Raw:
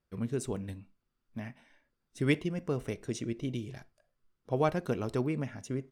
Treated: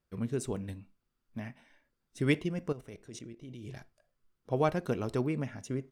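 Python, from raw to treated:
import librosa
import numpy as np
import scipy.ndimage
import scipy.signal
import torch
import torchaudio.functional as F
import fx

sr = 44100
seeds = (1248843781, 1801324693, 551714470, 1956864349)

y = fx.level_steps(x, sr, step_db=15, at=(2.72, 3.65))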